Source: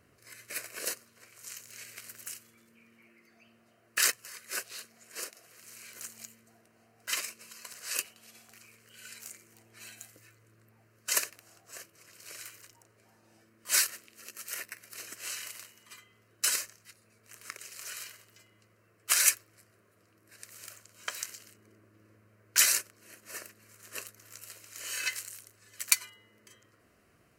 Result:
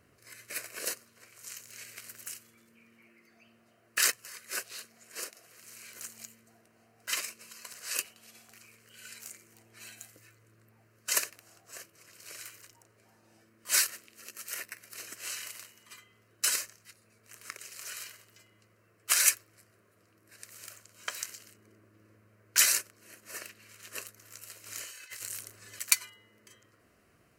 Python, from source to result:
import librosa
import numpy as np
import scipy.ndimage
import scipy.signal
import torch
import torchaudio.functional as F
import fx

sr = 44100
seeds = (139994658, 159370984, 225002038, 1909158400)

y = fx.peak_eq(x, sr, hz=3100.0, db=9.5, octaves=1.5, at=(23.41, 23.89))
y = fx.over_compress(y, sr, threshold_db=-46.0, ratio=-1.0, at=(24.65, 25.79), fade=0.02)